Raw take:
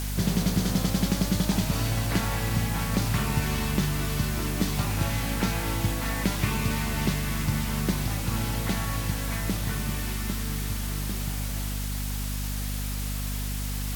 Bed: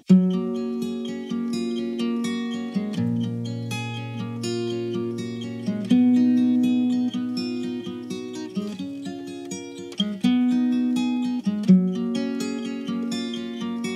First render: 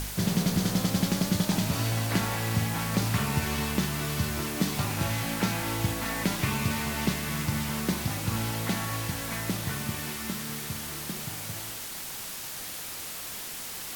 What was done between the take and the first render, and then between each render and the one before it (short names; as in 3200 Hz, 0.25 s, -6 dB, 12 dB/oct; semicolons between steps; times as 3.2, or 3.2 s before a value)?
de-hum 50 Hz, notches 9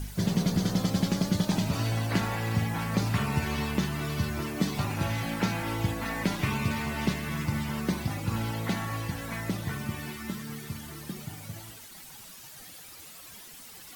denoiser 12 dB, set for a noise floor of -38 dBFS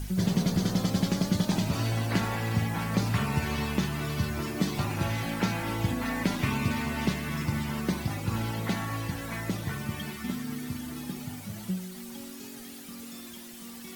add bed -17.5 dB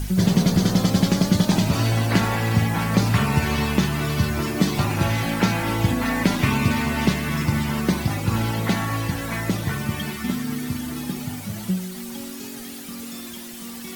gain +8 dB